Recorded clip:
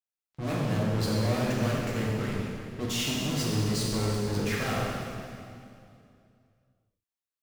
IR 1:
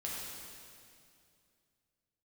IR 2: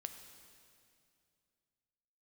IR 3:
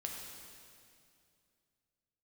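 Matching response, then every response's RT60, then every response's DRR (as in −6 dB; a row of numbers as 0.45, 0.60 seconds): 1; 2.4, 2.4, 2.4 seconds; −5.0, 6.5, 0.0 decibels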